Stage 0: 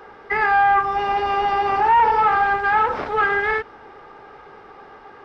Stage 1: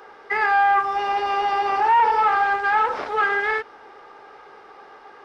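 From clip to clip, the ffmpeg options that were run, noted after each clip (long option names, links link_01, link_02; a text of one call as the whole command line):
ffmpeg -i in.wav -af "bass=frequency=250:gain=-12,treble=frequency=4000:gain=6,volume=-1.5dB" out.wav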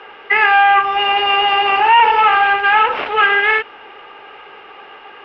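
ffmpeg -i in.wav -af "lowpass=frequency=2800:width_type=q:width=5.9,volume=5dB" out.wav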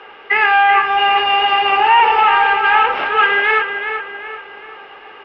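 ffmpeg -i in.wav -filter_complex "[0:a]asplit=2[link_01][link_02];[link_02]adelay=384,lowpass=frequency=4200:poles=1,volume=-7dB,asplit=2[link_03][link_04];[link_04]adelay=384,lowpass=frequency=4200:poles=1,volume=0.44,asplit=2[link_05][link_06];[link_06]adelay=384,lowpass=frequency=4200:poles=1,volume=0.44,asplit=2[link_07][link_08];[link_08]adelay=384,lowpass=frequency=4200:poles=1,volume=0.44,asplit=2[link_09][link_10];[link_10]adelay=384,lowpass=frequency=4200:poles=1,volume=0.44[link_11];[link_01][link_03][link_05][link_07][link_09][link_11]amix=inputs=6:normalize=0,volume=-1dB" out.wav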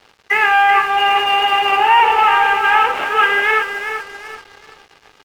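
ffmpeg -i in.wav -af "aeval=exprs='sgn(val(0))*max(abs(val(0))-0.0168,0)':channel_layout=same" out.wav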